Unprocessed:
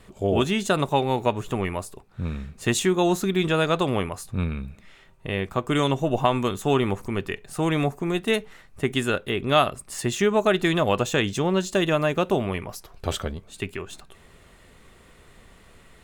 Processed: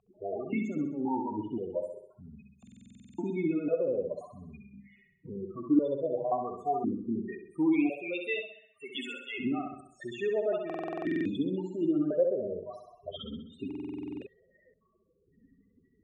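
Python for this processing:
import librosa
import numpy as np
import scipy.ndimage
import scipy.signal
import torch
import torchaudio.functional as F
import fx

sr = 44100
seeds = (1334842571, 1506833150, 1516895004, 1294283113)

p1 = fx.rattle_buzz(x, sr, strikes_db=-30.0, level_db=-27.0)
p2 = fx.tilt_eq(p1, sr, slope=4.0, at=(7.72, 9.38), fade=0.02)
p3 = fx.over_compress(p2, sr, threshold_db=-27.0, ratio=-1.0)
p4 = p2 + F.gain(torch.from_numpy(p3), 1.0).numpy()
p5 = fx.spec_topn(p4, sr, count=8)
p6 = p5 + fx.echo_feedback(p5, sr, ms=65, feedback_pct=50, wet_db=-5.0, dry=0)
p7 = fx.buffer_glitch(p6, sr, at_s=(2.58, 10.65, 13.66), block=2048, repeats=12)
y = fx.vowel_held(p7, sr, hz=1.9)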